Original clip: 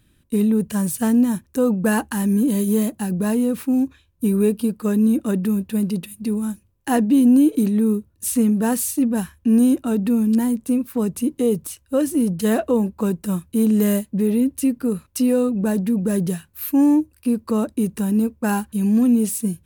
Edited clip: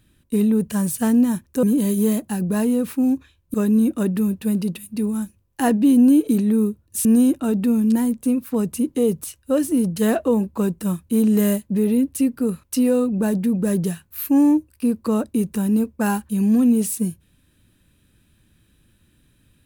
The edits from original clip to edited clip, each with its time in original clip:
0:01.63–0:02.33: remove
0:04.24–0:04.82: remove
0:08.33–0:09.48: remove

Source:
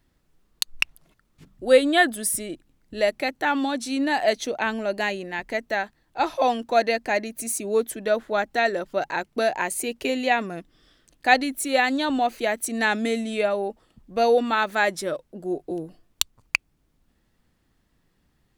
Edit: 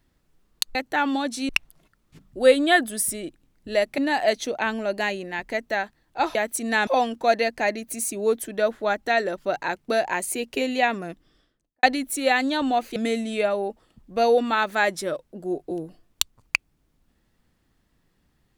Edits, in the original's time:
0:03.24–0:03.98: move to 0:00.75
0:10.58–0:11.31: fade out and dull
0:12.44–0:12.96: move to 0:06.35

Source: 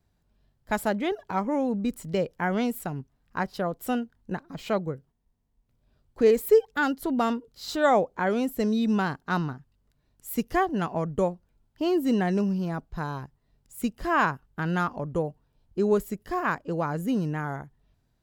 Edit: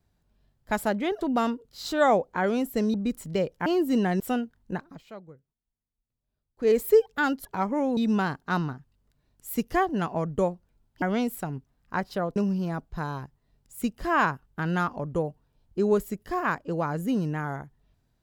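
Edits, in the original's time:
0:01.21–0:01.73: swap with 0:07.04–0:08.77
0:02.45–0:03.79: swap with 0:11.82–0:12.36
0:04.44–0:06.33: duck −16.5 dB, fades 0.17 s

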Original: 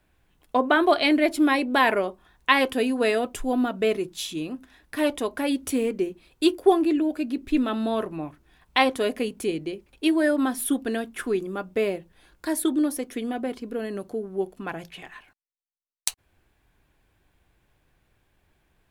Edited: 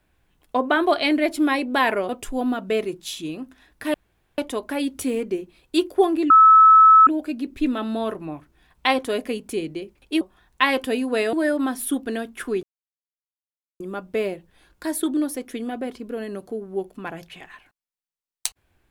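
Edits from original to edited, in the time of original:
0:02.09–0:03.21: move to 0:10.12
0:05.06: splice in room tone 0.44 s
0:06.98: insert tone 1,300 Hz −7.5 dBFS 0.77 s
0:11.42: splice in silence 1.17 s

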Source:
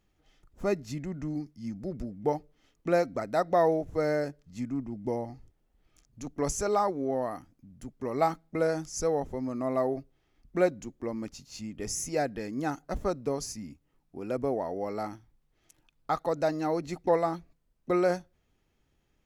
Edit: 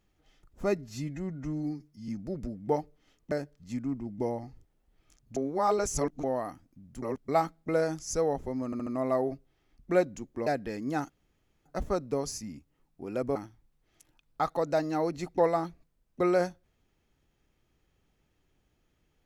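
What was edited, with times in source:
0:00.78–0:01.65: time-stretch 1.5×
0:02.88–0:04.18: remove
0:06.23–0:07.10: reverse
0:07.89–0:08.15: reverse
0:09.52: stutter 0.07 s, 4 plays
0:11.12–0:12.17: remove
0:12.80: splice in room tone 0.56 s
0:14.50–0:15.05: remove

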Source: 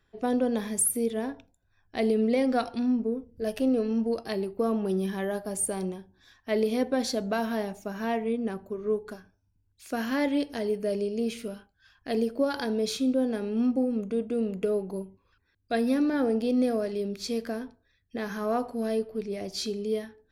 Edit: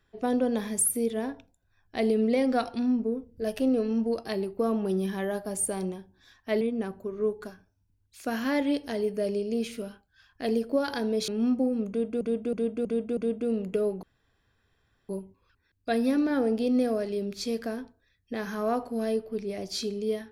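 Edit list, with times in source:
0:06.61–0:08.27: remove
0:12.94–0:13.45: remove
0:14.06–0:14.38: repeat, 5 plays
0:14.92: splice in room tone 1.06 s

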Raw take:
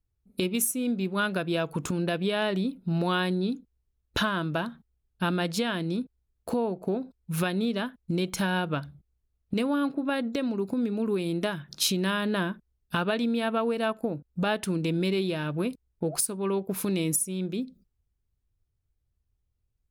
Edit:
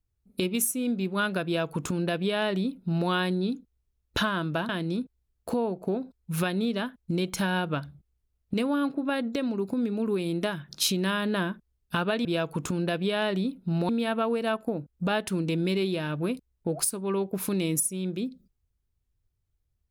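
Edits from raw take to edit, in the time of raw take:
0:01.45–0:03.09: duplicate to 0:13.25
0:04.69–0:05.69: remove

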